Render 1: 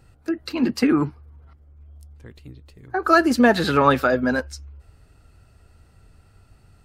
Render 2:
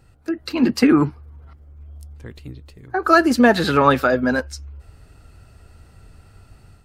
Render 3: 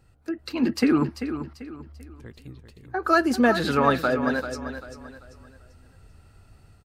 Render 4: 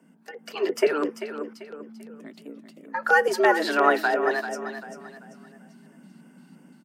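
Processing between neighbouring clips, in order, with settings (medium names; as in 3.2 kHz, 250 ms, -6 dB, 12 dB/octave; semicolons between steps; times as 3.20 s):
level rider gain up to 6 dB
feedback delay 391 ms, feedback 35%, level -10 dB; trim -6 dB
LFO notch square 2.9 Hz 340–4000 Hz; frequency shift +150 Hz; trim +1 dB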